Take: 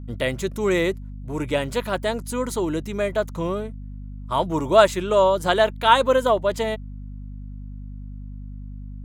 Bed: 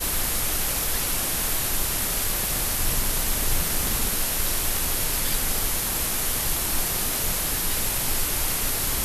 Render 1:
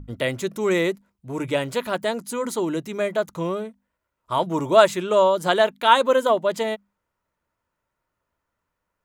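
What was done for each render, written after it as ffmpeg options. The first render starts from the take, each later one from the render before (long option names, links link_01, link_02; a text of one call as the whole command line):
ffmpeg -i in.wav -af "bandreject=frequency=50:width_type=h:width=6,bandreject=frequency=100:width_type=h:width=6,bandreject=frequency=150:width_type=h:width=6,bandreject=frequency=200:width_type=h:width=6,bandreject=frequency=250:width_type=h:width=6" out.wav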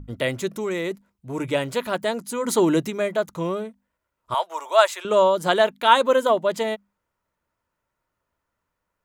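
ffmpeg -i in.wav -filter_complex "[0:a]asettb=1/sr,asplit=3[link_01][link_02][link_03];[link_01]atrim=end=0.484[link_04];[link_02]atrim=start=0.48:end=0.91,asetpts=PTS-STARTPTS,afade=type=in:duration=0.004:curve=qsin,afade=type=out:start_time=0.426:duration=0.004:curve=qsin,acompressor=threshold=-23dB:ratio=6:attack=3.2:release=140:knee=1:detection=peak[link_05];[link_03]atrim=start=0.906[link_06];[link_04][link_05]acrossfade=duration=0.004:curve1=hsin:curve2=qsin[link_07];[link_07][link_06]acrossfade=duration=0.004:curve1=qsin:curve2=hsin,asplit=3[link_08][link_09][link_10];[link_08]afade=type=out:start_time=2.47:duration=0.02[link_11];[link_09]acontrast=62,afade=type=in:start_time=2.47:duration=0.02,afade=type=out:start_time=2.89:duration=0.02[link_12];[link_10]afade=type=in:start_time=2.89:duration=0.02[link_13];[link_11][link_12][link_13]amix=inputs=3:normalize=0,asettb=1/sr,asplit=3[link_14][link_15][link_16];[link_14]atrim=end=4.344[link_17];[link_15]atrim=start=4.34:end=5.05,asetpts=PTS-STARTPTS,afade=type=in:duration=0.004:curve=qsin,afade=type=out:start_time=0.706:duration=0.004:curve=qsin,highpass=frequency=640:width=0.5412,highpass=frequency=640:width=1.3066[link_18];[link_16]atrim=start=5.046[link_19];[link_17][link_18]acrossfade=duration=0.004:curve1=hsin:curve2=qsin[link_20];[link_20][link_19]acrossfade=duration=0.004:curve1=qsin:curve2=hsin" out.wav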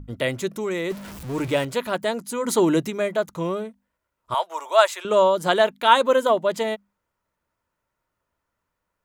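ffmpeg -i in.wav -filter_complex "[0:a]asettb=1/sr,asplit=3[link_01][link_02][link_03];[link_01]atrim=end=0.904[link_04];[link_02]atrim=start=0.9:end=1.65,asetpts=PTS-STARTPTS,afade=type=in:duration=0.004:curve=qsin,afade=type=out:start_time=0.746:duration=0.004:curve=qsin,aeval=exprs='val(0)+0.5*0.0251*sgn(val(0))':channel_layout=same[link_05];[link_03]atrim=start=1.646[link_06];[link_04][link_05]acrossfade=duration=0.004:curve1=hsin:curve2=qsin[link_07];[link_07][link_06]acrossfade=duration=0.004:curve1=qsin:curve2=hsin" out.wav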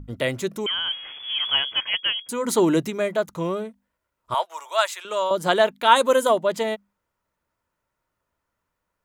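ffmpeg -i in.wav -filter_complex "[0:a]asettb=1/sr,asplit=3[link_01][link_02][link_03];[link_01]atrim=end=0.664[link_04];[link_02]atrim=start=0.66:end=2.29,asetpts=PTS-STARTPTS,afade=type=in:duration=0.004:curve=qsin,afade=type=out:start_time=1.626:duration=0.004:curve=qsin,lowpass=frequency=3000:width_type=q:width=0.5098,lowpass=frequency=3000:width_type=q:width=0.6013,lowpass=frequency=3000:width_type=q:width=0.9,lowpass=frequency=3000:width_type=q:width=2.563,afreqshift=-3500[link_05];[link_03]atrim=start=2.286[link_06];[link_04][link_05]acrossfade=duration=0.004:curve1=hsin:curve2=qsin[link_07];[link_07][link_06]acrossfade=duration=0.004:curve1=qsin:curve2=hsin,asettb=1/sr,asplit=3[link_08][link_09][link_10];[link_08]atrim=end=4.454[link_11];[link_09]atrim=start=4.45:end=5.31,asetpts=PTS-STARTPTS,afade=type=in:duration=0.004:curve=qsin,afade=type=out:start_time=0.856:duration=0.004:curve=qsin,highpass=frequency=1400:poles=1[link_12];[link_10]atrim=start=5.306[link_13];[link_11][link_12]acrossfade=duration=0.004:curve1=hsin:curve2=qsin[link_14];[link_14][link_13]acrossfade=duration=0.004:curve1=qsin:curve2=hsin,asettb=1/sr,asplit=3[link_15][link_16][link_17];[link_15]atrim=end=5.964[link_18];[link_16]atrim=start=5.96:end=6.38,asetpts=PTS-STARTPTS,afade=type=in:duration=0.004:curve=qsin,afade=type=out:start_time=0.416:duration=0.004:curve=qsin,equalizer=frequency=10000:width_type=o:width=1.2:gain=11.5[link_19];[link_17]atrim=start=6.376[link_20];[link_18][link_19]acrossfade=duration=0.004:curve1=hsin:curve2=qsin[link_21];[link_21][link_20]acrossfade=duration=0.004:curve1=qsin:curve2=hsin" out.wav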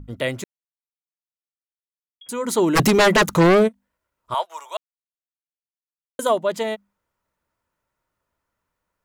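ffmpeg -i in.wav -filter_complex "[0:a]asplit=3[link_01][link_02][link_03];[link_01]afade=type=out:start_time=2.75:duration=0.02[link_04];[link_02]aeval=exprs='0.299*sin(PI/2*4.47*val(0)/0.299)':channel_layout=same,afade=type=in:start_time=2.75:duration=0.02,afade=type=out:start_time=3.67:duration=0.02[link_05];[link_03]afade=type=in:start_time=3.67:duration=0.02[link_06];[link_04][link_05][link_06]amix=inputs=3:normalize=0,asplit=5[link_07][link_08][link_09][link_10][link_11];[link_07]atrim=end=0.44,asetpts=PTS-STARTPTS,afade=type=out:start_time=0.436:duration=0.004:curve=hsin[link_12];[link_08]atrim=start=0.44:end=2.21,asetpts=PTS-STARTPTS,volume=0[link_13];[link_09]atrim=start=2.21:end=4.77,asetpts=PTS-STARTPTS,afade=type=in:duration=0.004:curve=hsin,afade=type=out:start_time=2.556:duration=0.004:curve=hsin[link_14];[link_10]atrim=start=4.77:end=6.19,asetpts=PTS-STARTPTS,volume=0[link_15];[link_11]atrim=start=6.19,asetpts=PTS-STARTPTS,afade=type=in:duration=0.004:curve=hsin[link_16];[link_12][link_13][link_14][link_15][link_16]concat=n=5:v=0:a=1" out.wav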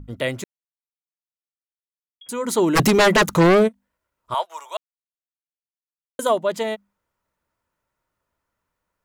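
ffmpeg -i in.wav -af anull out.wav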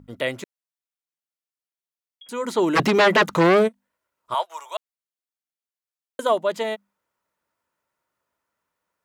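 ffmpeg -i in.wav -filter_complex "[0:a]acrossover=split=4600[link_01][link_02];[link_02]acompressor=threshold=-41dB:ratio=4:attack=1:release=60[link_03];[link_01][link_03]amix=inputs=2:normalize=0,highpass=frequency=280:poles=1" out.wav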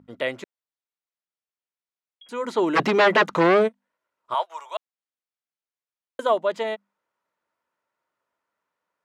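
ffmpeg -i in.wav -af "highpass=frequency=280:poles=1,aemphasis=mode=reproduction:type=50fm" out.wav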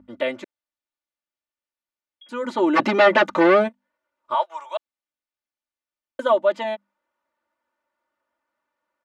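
ffmpeg -i in.wav -af "lowpass=frequency=3800:poles=1,aecho=1:1:3.4:0.87" out.wav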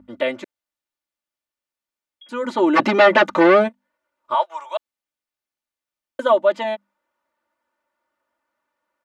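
ffmpeg -i in.wav -af "volume=2.5dB,alimiter=limit=-2dB:level=0:latency=1" out.wav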